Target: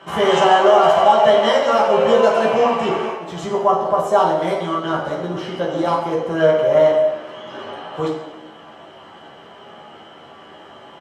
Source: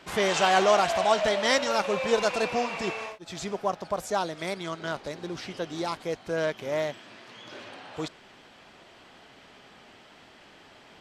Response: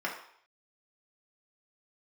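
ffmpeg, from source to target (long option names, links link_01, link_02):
-filter_complex "[0:a]alimiter=limit=-15.5dB:level=0:latency=1:release=197,asplit=2[link_01][link_02];[link_02]adelay=13,volume=-3.5dB[link_03];[link_01][link_03]amix=inputs=2:normalize=0[link_04];[1:a]atrim=start_sample=2205,asetrate=25137,aresample=44100[link_05];[link_04][link_05]afir=irnorm=-1:irlink=0"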